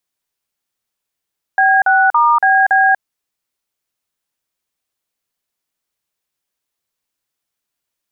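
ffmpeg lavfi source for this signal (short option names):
-f lavfi -i "aevalsrc='0.282*clip(min(mod(t,0.282),0.24-mod(t,0.282))/0.002,0,1)*(eq(floor(t/0.282),0)*(sin(2*PI*770*mod(t,0.282))+sin(2*PI*1633*mod(t,0.282)))+eq(floor(t/0.282),1)*(sin(2*PI*770*mod(t,0.282))+sin(2*PI*1477*mod(t,0.282)))+eq(floor(t/0.282),2)*(sin(2*PI*941*mod(t,0.282))+sin(2*PI*1209*mod(t,0.282)))+eq(floor(t/0.282),3)*(sin(2*PI*770*mod(t,0.282))+sin(2*PI*1633*mod(t,0.282)))+eq(floor(t/0.282),4)*(sin(2*PI*770*mod(t,0.282))+sin(2*PI*1633*mod(t,0.282))))':d=1.41:s=44100"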